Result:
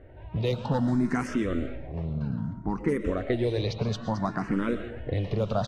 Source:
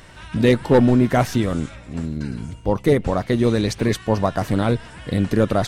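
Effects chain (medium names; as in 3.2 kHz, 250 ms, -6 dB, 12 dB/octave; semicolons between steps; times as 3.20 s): level-controlled noise filter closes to 740 Hz, open at -11 dBFS; compression 4:1, threshold -21 dBFS, peak gain reduction 9.5 dB; echo from a far wall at 120 m, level -23 dB; on a send at -10.5 dB: reverberation RT60 0.55 s, pre-delay 80 ms; on the sum: barber-pole phaser +0.61 Hz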